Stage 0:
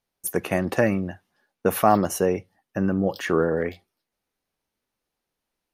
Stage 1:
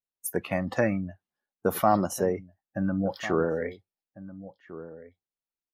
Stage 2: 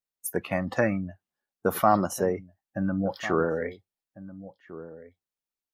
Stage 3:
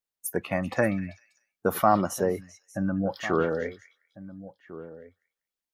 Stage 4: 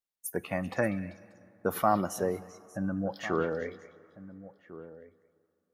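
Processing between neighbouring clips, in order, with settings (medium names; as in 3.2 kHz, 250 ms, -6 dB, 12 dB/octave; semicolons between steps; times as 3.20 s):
spectral noise reduction 16 dB; echo from a far wall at 240 m, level -15 dB; trim -4 dB
dynamic bell 1.3 kHz, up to +4 dB, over -39 dBFS, Q 1.6
repeats whose band climbs or falls 195 ms, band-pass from 2.9 kHz, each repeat 0.7 oct, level -10 dB
plate-style reverb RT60 3.1 s, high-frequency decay 0.6×, DRR 19 dB; trim -4.5 dB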